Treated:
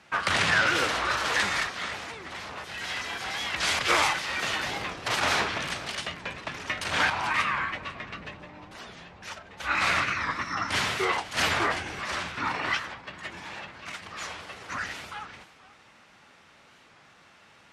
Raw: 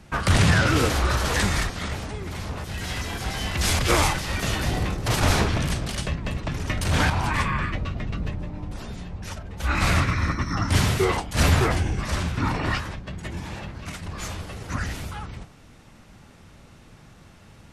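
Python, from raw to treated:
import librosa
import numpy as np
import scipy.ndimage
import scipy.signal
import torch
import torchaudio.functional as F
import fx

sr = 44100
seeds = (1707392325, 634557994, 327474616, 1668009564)

p1 = fx.bandpass_q(x, sr, hz=2000.0, q=0.56)
p2 = p1 + fx.echo_single(p1, sr, ms=491, db=-18.5, dry=0)
p3 = fx.record_warp(p2, sr, rpm=45.0, depth_cents=160.0)
y = F.gain(torch.from_numpy(p3), 1.5).numpy()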